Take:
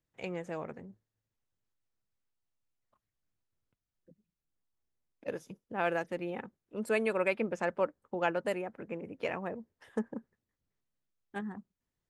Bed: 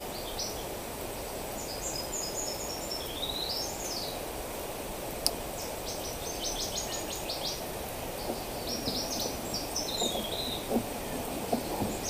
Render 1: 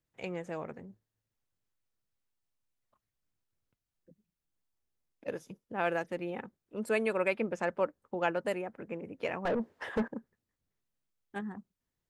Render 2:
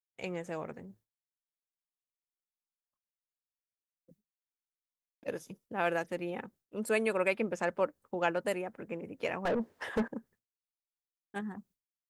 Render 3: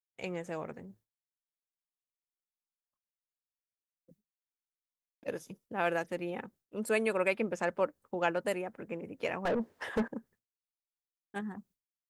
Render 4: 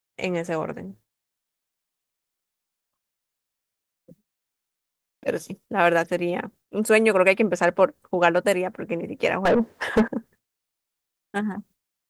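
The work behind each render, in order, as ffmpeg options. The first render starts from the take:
-filter_complex "[0:a]asettb=1/sr,asplit=3[a][b][c];[a]atrim=end=9.454[d];[b]atrim=start=9.45:end=10.08,asetpts=PTS-STARTPTS,afade=t=in:d=0.004:c=qsin,afade=t=out:st=0.626:d=0.004:c=qsin,asplit=2[e][f];[f]highpass=f=720:p=1,volume=31dB,asoftclip=type=tanh:threshold=-21dB[g];[e][g]amix=inputs=2:normalize=0,lowpass=f=1.1k:p=1,volume=-6dB[h];[c]atrim=start=10.076[i];[d][h]acrossfade=d=0.004:c1=hsin:c2=qsin[j];[j][i]acrossfade=d=0.004:c1=qsin:c2=hsin"
-af "agate=range=-33dB:threshold=-58dB:ratio=3:detection=peak,highshelf=f=6.1k:g=8.5"
-af anull
-af "volume=12dB,alimiter=limit=-3dB:level=0:latency=1"

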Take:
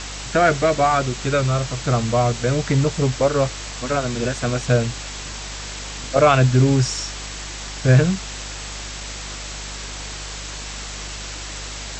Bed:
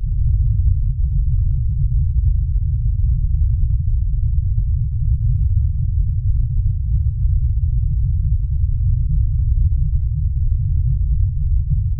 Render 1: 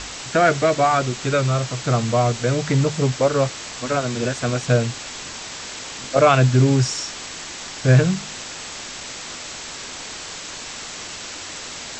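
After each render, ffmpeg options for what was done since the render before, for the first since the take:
-af "bandreject=f=50:t=h:w=4,bandreject=f=100:t=h:w=4,bandreject=f=150:t=h:w=4,bandreject=f=200:t=h:w=4"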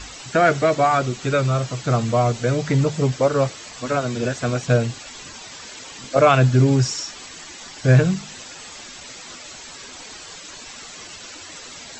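-af "afftdn=nr=10:nf=-34"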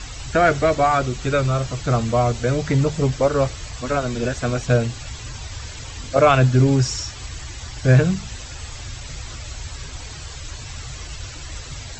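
-filter_complex "[1:a]volume=-18dB[a];[0:a][a]amix=inputs=2:normalize=0"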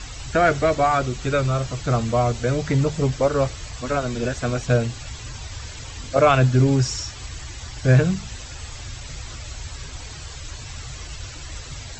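-af "volume=-1.5dB"

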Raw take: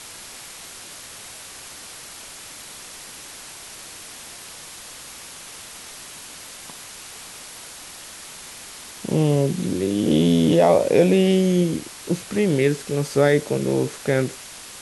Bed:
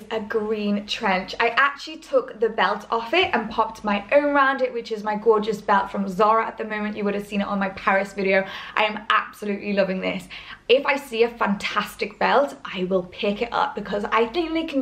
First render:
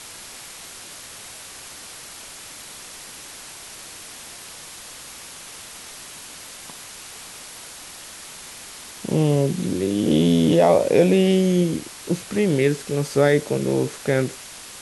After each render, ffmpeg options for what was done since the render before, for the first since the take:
-af anull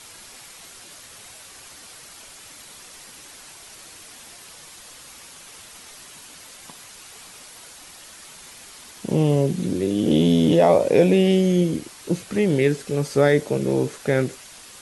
-af "afftdn=nr=6:nf=-40"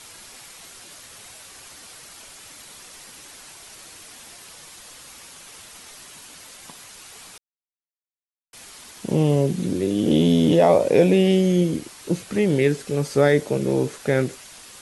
-filter_complex "[0:a]asplit=3[a][b][c];[a]atrim=end=7.38,asetpts=PTS-STARTPTS,afade=t=out:st=7.376:d=0.004:c=hsin[d];[b]atrim=start=7.38:end=8.53,asetpts=PTS-STARTPTS,volume=0[e];[c]atrim=start=8.53,asetpts=PTS-STARTPTS,afade=t=in:d=0.004:c=hsin[f];[d][e][f]concat=n=3:v=0:a=1"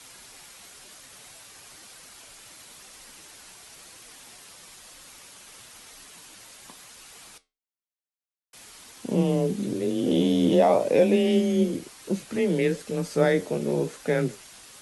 -af "flanger=delay=3.8:depth=8.4:regen=72:speed=1:shape=sinusoidal,afreqshift=23"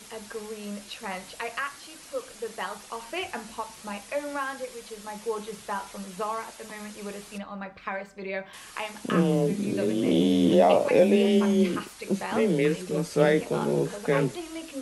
-filter_complex "[1:a]volume=-13.5dB[a];[0:a][a]amix=inputs=2:normalize=0"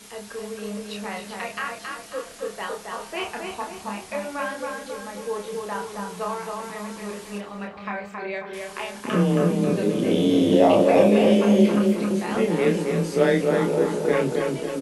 -filter_complex "[0:a]asplit=2[a][b];[b]adelay=29,volume=-3.5dB[c];[a][c]amix=inputs=2:normalize=0,asplit=2[d][e];[e]adelay=271,lowpass=f=2.3k:p=1,volume=-3dB,asplit=2[f][g];[g]adelay=271,lowpass=f=2.3k:p=1,volume=0.52,asplit=2[h][i];[i]adelay=271,lowpass=f=2.3k:p=1,volume=0.52,asplit=2[j][k];[k]adelay=271,lowpass=f=2.3k:p=1,volume=0.52,asplit=2[l][m];[m]adelay=271,lowpass=f=2.3k:p=1,volume=0.52,asplit=2[n][o];[o]adelay=271,lowpass=f=2.3k:p=1,volume=0.52,asplit=2[p][q];[q]adelay=271,lowpass=f=2.3k:p=1,volume=0.52[r];[d][f][h][j][l][n][p][r]amix=inputs=8:normalize=0"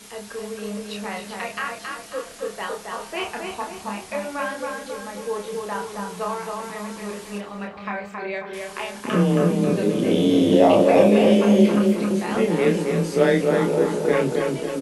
-af "volume=1.5dB"

